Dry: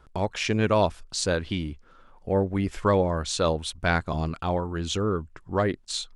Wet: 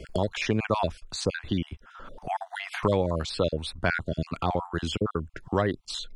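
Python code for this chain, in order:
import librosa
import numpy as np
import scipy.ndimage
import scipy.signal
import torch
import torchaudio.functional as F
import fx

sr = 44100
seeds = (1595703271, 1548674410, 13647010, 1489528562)

y = fx.spec_dropout(x, sr, seeds[0], share_pct=34)
y = fx.high_shelf(y, sr, hz=6200.0, db=-6.0)
y = fx.band_squash(y, sr, depth_pct=70)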